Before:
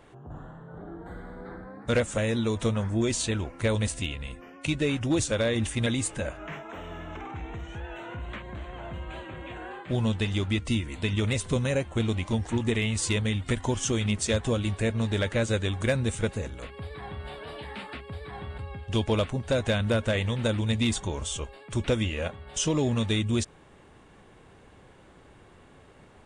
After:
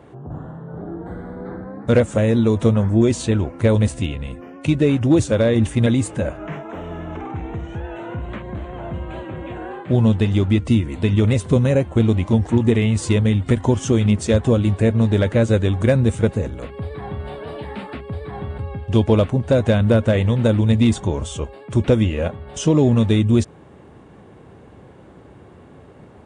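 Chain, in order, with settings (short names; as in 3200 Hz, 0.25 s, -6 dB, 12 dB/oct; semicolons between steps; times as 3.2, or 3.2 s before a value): HPF 75 Hz; tilt shelf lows +6.5 dB, about 1100 Hz; gain +5.5 dB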